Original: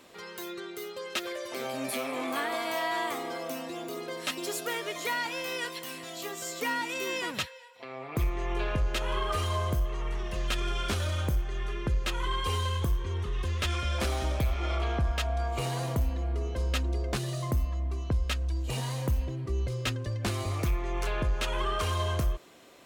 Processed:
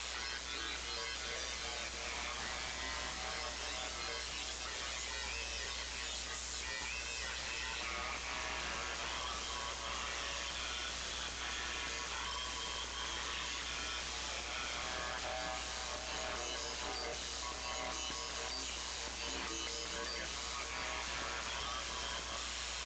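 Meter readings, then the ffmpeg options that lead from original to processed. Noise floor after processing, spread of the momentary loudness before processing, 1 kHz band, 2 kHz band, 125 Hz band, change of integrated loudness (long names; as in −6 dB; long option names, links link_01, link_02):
−44 dBFS, 7 LU, −8.0 dB, −4.5 dB, −22.0 dB, −7.5 dB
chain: -filter_complex "[0:a]highpass=1100,highshelf=frequency=3800:gain=10,areverse,acompressor=threshold=-47dB:ratio=6,areverse,aeval=exprs='0.0335*sin(PI/2*8.91*val(0)/0.0335)':channel_layout=same,aeval=exprs='(tanh(631*val(0)+0.2)-tanh(0.2))/631':channel_layout=same,aeval=exprs='val(0)*sin(2*PI*60*n/s)':channel_layout=same,asplit=2[link_01][link_02];[link_02]adelay=30,volume=-12.5dB[link_03];[link_01][link_03]amix=inputs=2:normalize=0,asplit=2[link_04][link_05];[link_05]aecho=0:1:670:0.355[link_06];[link_04][link_06]amix=inputs=2:normalize=0,aresample=16000,aresample=44100,volume=18dB"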